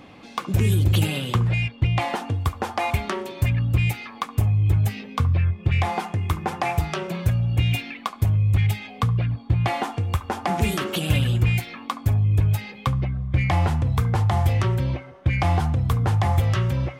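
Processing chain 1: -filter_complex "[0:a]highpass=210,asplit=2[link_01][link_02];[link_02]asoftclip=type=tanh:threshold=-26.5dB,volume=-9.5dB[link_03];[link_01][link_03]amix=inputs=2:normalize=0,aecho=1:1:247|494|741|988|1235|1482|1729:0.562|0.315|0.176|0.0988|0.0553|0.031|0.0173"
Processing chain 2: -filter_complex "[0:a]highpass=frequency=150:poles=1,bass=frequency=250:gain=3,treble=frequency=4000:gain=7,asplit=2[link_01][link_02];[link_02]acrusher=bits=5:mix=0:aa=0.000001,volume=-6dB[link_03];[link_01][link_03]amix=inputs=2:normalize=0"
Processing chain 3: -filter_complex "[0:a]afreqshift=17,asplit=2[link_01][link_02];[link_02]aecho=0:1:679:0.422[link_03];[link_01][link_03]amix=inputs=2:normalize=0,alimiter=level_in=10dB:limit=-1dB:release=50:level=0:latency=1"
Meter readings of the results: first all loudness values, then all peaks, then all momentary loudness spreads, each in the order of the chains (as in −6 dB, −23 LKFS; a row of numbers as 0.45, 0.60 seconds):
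−26.0, −20.5, −12.5 LKFS; −9.5, −4.0, −1.0 dBFS; 6, 6, 5 LU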